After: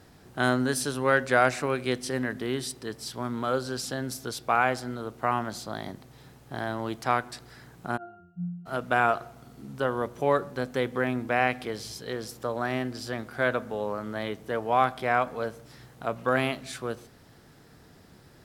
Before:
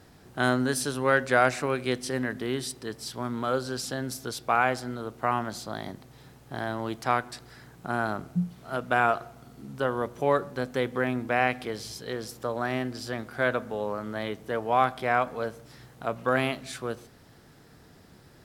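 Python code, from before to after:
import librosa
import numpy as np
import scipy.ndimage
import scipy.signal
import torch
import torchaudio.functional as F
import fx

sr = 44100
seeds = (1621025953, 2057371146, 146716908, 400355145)

y = fx.octave_resonator(x, sr, note='F', decay_s=0.67, at=(7.96, 8.65), fade=0.02)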